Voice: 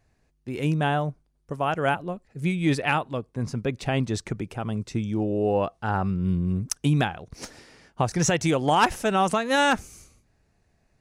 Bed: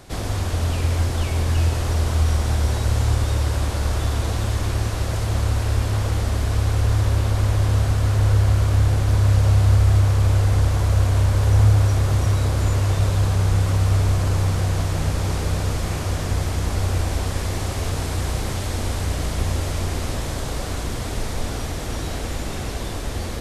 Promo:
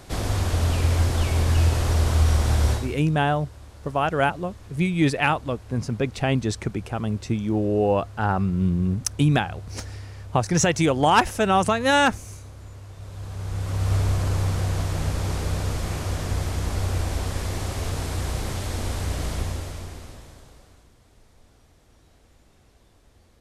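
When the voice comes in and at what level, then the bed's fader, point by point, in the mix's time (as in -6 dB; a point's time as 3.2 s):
2.35 s, +2.5 dB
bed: 2.72 s 0 dB
3.02 s -22 dB
12.93 s -22 dB
13.93 s -3.5 dB
19.34 s -3.5 dB
20.94 s -30 dB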